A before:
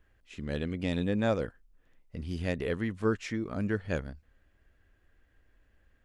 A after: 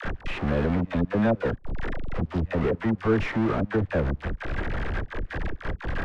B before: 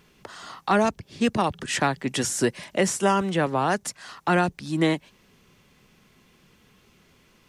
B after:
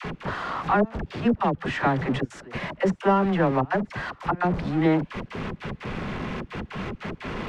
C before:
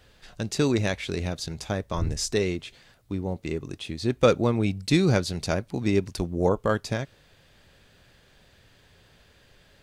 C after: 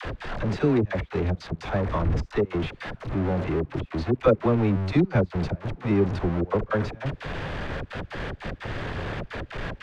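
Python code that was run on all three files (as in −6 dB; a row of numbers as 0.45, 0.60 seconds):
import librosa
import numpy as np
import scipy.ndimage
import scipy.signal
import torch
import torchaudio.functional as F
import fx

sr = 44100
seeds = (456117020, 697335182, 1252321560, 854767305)

y = x + 0.5 * 10.0 ** (-22.0 / 20.0) * np.sign(x)
y = fx.step_gate(y, sr, bpm=150, pattern='x.xxxxxx.x.xx.', floor_db=-24.0, edge_ms=4.5)
y = scipy.signal.sosfilt(scipy.signal.butter(2, 1800.0, 'lowpass', fs=sr, output='sos'), y)
y = fx.dispersion(y, sr, late='lows', ms=52.0, hz=590.0)
y = y * 10.0 ** (-26 / 20.0) / np.sqrt(np.mean(np.square(y)))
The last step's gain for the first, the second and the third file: +1.5, −1.0, −1.0 decibels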